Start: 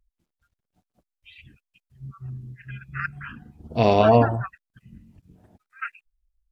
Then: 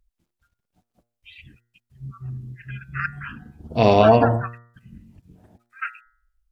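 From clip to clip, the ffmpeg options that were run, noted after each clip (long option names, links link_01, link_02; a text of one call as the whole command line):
ffmpeg -i in.wav -af "bandreject=frequency=118.2:width_type=h:width=4,bandreject=frequency=236.4:width_type=h:width=4,bandreject=frequency=354.6:width_type=h:width=4,bandreject=frequency=472.8:width_type=h:width=4,bandreject=frequency=591:width_type=h:width=4,bandreject=frequency=709.2:width_type=h:width=4,bandreject=frequency=827.4:width_type=h:width=4,bandreject=frequency=945.6:width_type=h:width=4,bandreject=frequency=1063.8:width_type=h:width=4,bandreject=frequency=1182:width_type=h:width=4,bandreject=frequency=1300.2:width_type=h:width=4,bandreject=frequency=1418.4:width_type=h:width=4,bandreject=frequency=1536.6:width_type=h:width=4,bandreject=frequency=1654.8:width_type=h:width=4,bandreject=frequency=1773:width_type=h:width=4,bandreject=frequency=1891.2:width_type=h:width=4,bandreject=frequency=2009.4:width_type=h:width=4,volume=3dB" out.wav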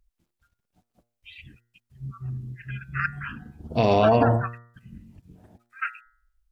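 ffmpeg -i in.wav -af "alimiter=limit=-8.5dB:level=0:latency=1:release=46" out.wav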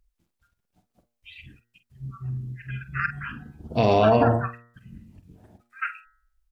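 ffmpeg -i in.wav -filter_complex "[0:a]asplit=2[link_01][link_02];[link_02]adelay=47,volume=-11.5dB[link_03];[link_01][link_03]amix=inputs=2:normalize=0" out.wav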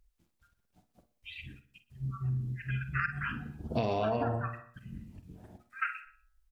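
ffmpeg -i in.wav -af "aecho=1:1:61|122|183|244:0.133|0.0693|0.0361|0.0188,acompressor=threshold=-28dB:ratio=6" out.wav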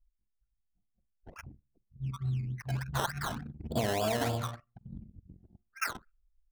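ffmpeg -i in.wav -af "asuperstop=centerf=3900:order=20:qfactor=4.4,acrusher=samples=15:mix=1:aa=0.000001:lfo=1:lforange=9:lforate=3.4,anlmdn=0.1" out.wav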